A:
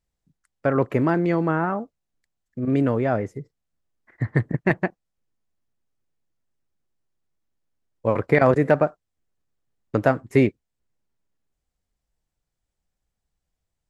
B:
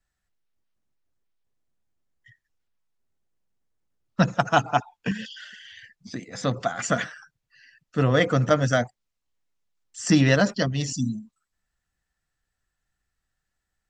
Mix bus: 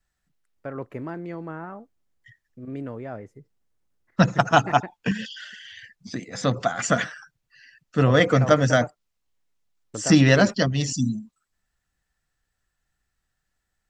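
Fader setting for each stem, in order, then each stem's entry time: -13.0, +2.5 dB; 0.00, 0.00 s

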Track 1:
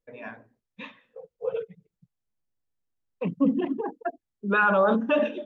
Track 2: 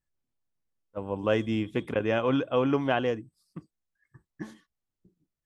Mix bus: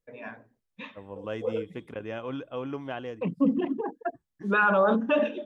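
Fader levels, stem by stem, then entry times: -1.0, -9.5 dB; 0.00, 0.00 s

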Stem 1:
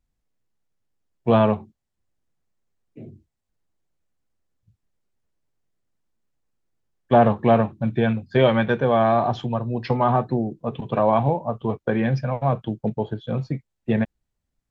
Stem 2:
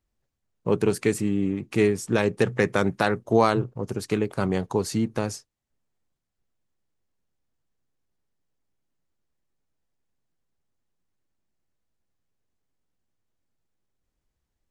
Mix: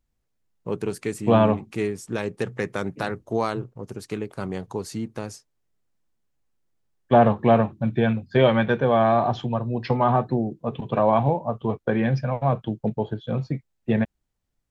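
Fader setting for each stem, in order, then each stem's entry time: -0.5, -5.5 dB; 0.00, 0.00 s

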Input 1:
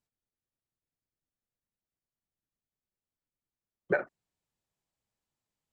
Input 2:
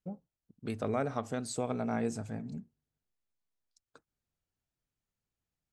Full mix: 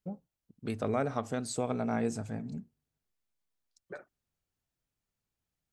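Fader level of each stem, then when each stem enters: -17.0, +1.5 dB; 0.00, 0.00 s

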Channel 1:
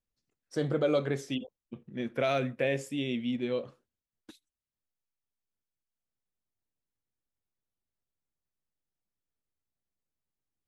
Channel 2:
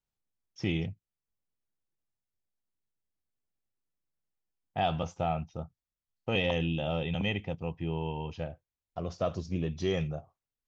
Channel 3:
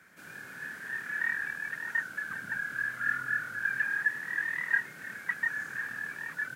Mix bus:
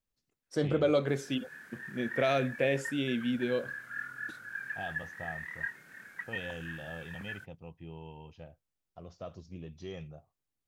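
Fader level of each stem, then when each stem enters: +0.5, -12.5, -9.0 dB; 0.00, 0.00, 0.90 s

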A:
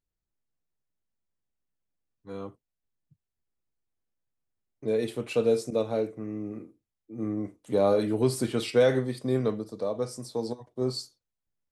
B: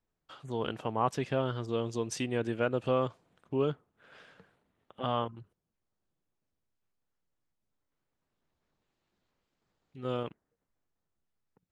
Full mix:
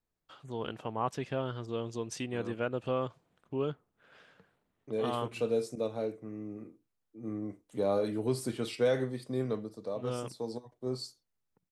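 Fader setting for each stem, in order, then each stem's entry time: -6.5, -3.5 dB; 0.05, 0.00 s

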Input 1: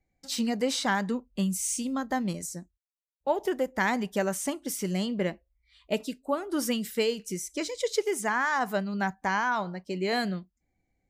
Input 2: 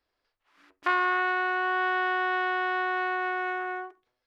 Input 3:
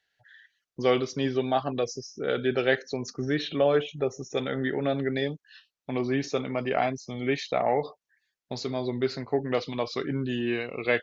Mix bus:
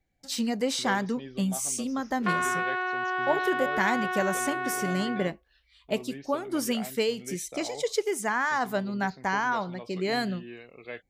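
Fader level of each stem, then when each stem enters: 0.0, -2.5, -15.0 dB; 0.00, 1.40, 0.00 s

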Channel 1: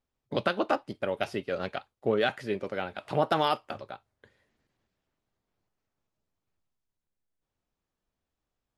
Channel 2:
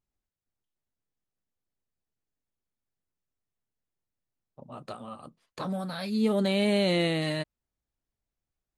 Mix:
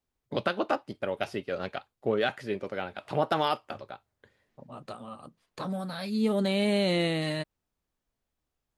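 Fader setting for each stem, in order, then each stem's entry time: -1.0, -1.0 dB; 0.00, 0.00 s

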